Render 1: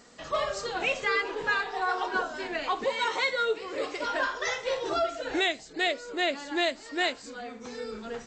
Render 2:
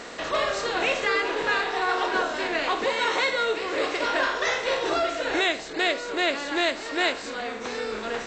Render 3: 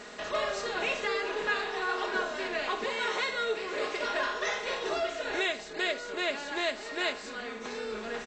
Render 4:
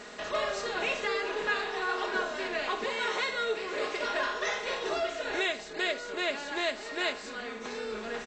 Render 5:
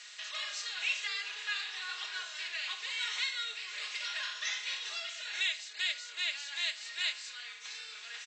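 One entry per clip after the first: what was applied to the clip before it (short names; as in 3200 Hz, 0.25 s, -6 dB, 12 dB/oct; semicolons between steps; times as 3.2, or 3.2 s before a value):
per-bin compression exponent 0.6
comb 4.8 ms, depth 58%; gain -7.5 dB
nothing audible
Butterworth band-pass 5000 Hz, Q 0.72; gain +2.5 dB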